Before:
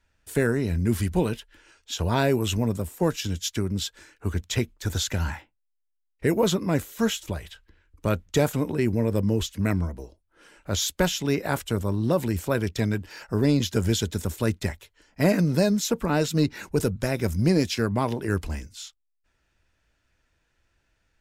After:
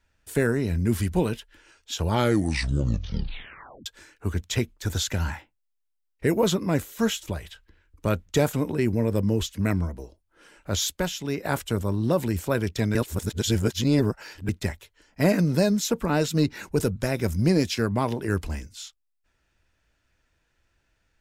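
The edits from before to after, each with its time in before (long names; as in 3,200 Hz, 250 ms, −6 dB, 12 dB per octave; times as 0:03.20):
0:02.01: tape stop 1.85 s
0:10.97–0:11.45: clip gain −4.5 dB
0:12.95–0:14.49: reverse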